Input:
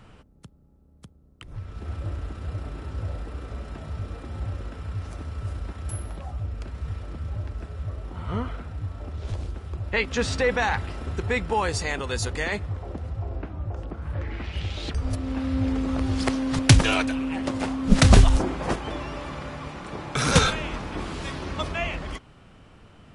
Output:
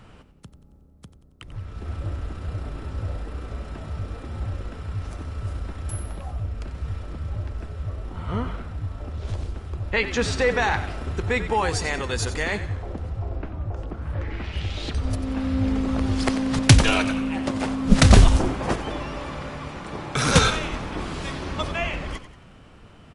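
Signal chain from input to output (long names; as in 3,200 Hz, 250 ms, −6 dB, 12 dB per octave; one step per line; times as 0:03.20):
reversed playback
upward compression, threshold −47 dBFS
reversed playback
echo with shifted repeats 91 ms, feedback 45%, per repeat −56 Hz, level −12 dB
level +1.5 dB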